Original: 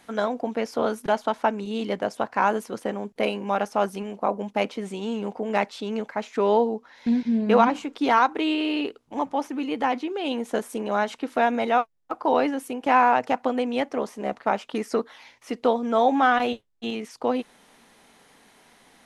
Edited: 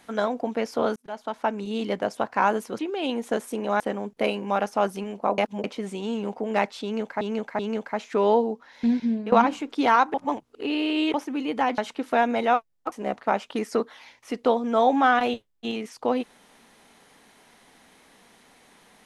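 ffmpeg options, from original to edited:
-filter_complex "[0:a]asplit=13[a][b][c][d][e][f][g][h][i][j][k][l][m];[a]atrim=end=0.96,asetpts=PTS-STARTPTS,afade=t=out:st=0.956:d=0.004:c=hsin[n];[b]atrim=start=0.96:end=2.792,asetpts=PTS-STARTPTS,afade=t=in:d=0.7[o];[c]atrim=start=10.008:end=11.022[p];[d]atrim=start=2.788:end=4.372[q];[e]atrim=start=4.368:end=4.632,asetpts=PTS-STARTPTS,areverse[r];[f]atrim=start=4.628:end=6.202[s];[g]atrim=start=5.818:end=6.202[t];[h]atrim=start=5.818:end=7.55,asetpts=PTS-STARTPTS,afade=t=out:st=1.452:d=0.28:silence=0.141254[u];[i]atrim=start=7.55:end=8.372,asetpts=PTS-STARTPTS,afade=t=in:d=0.004:c=hsin:silence=0.141254[v];[j]atrim=start=8.368:end=9.372,asetpts=PTS-STARTPTS,areverse[w];[k]atrim=start=9.368:end=10.012[x];[l]atrim=start=11.018:end=12.162[y];[m]atrim=start=14.108[z];[n][o]concat=n=2:v=0:a=1[aa];[aa][p]acrossfade=d=0.004:c1=hsin:c2=hsin[ab];[ab][q]acrossfade=d=0.004:c1=hsin:c2=hsin[ac];[ac][r]acrossfade=d=0.004:c1=hsin:c2=hsin[ad];[ad][s]acrossfade=d=0.004:c1=hsin:c2=hsin[ae];[ae][t]acrossfade=d=0.004:c1=hsin:c2=hsin[af];[u][v]concat=n=2:v=0:a=1[ag];[af][ag]acrossfade=d=0.004:c1=hsin:c2=hsin[ah];[ah][w]acrossfade=d=0.004:c1=hsin:c2=hsin[ai];[ai][x]acrossfade=d=0.004:c1=hsin:c2=hsin[aj];[aj][y]acrossfade=d=0.004:c1=hsin:c2=hsin[ak];[ak][z]acrossfade=d=0.004:c1=hsin:c2=hsin"

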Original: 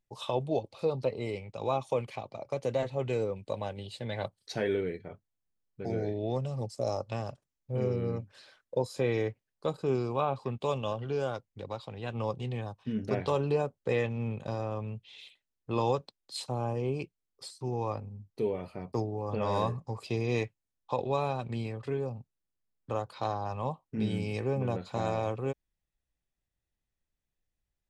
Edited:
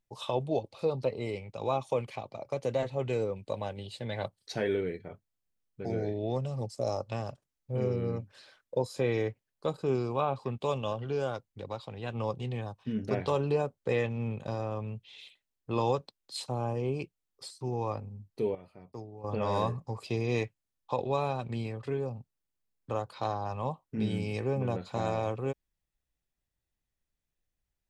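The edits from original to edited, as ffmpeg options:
-filter_complex "[0:a]asplit=3[a][b][c];[a]atrim=end=18.552[d];[b]atrim=start=18.548:end=19.242,asetpts=PTS-STARTPTS,volume=-11.5dB[e];[c]atrim=start=19.238[f];[d][e]acrossfade=d=0.004:c1=hsin:c2=hsin[g];[g][f]acrossfade=d=0.004:c1=hsin:c2=hsin"

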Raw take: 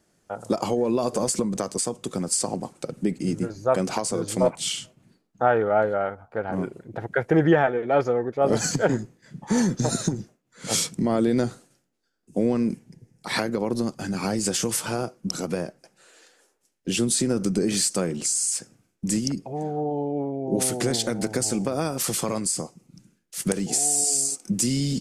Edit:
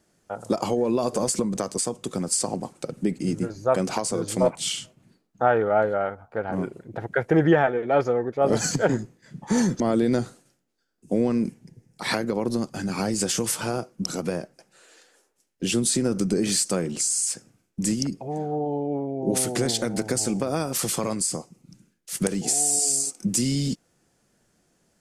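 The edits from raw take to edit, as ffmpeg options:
-filter_complex "[0:a]asplit=2[a][b];[a]atrim=end=9.802[c];[b]atrim=start=11.048[d];[c][d]acrossfade=d=0.004:c1=hsin:c2=hsin"

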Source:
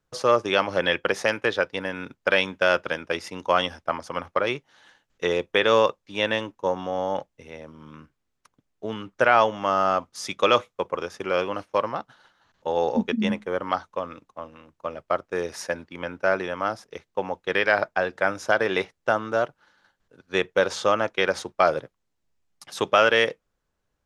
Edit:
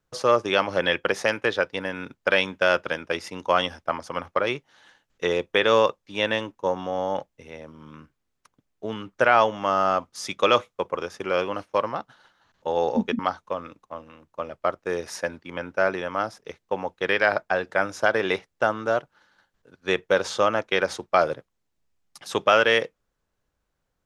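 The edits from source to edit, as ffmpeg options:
-filter_complex "[0:a]asplit=2[a][b];[a]atrim=end=13.192[c];[b]atrim=start=13.648[d];[c][d]acrossfade=d=0.004:c1=hsin:c2=hsin"

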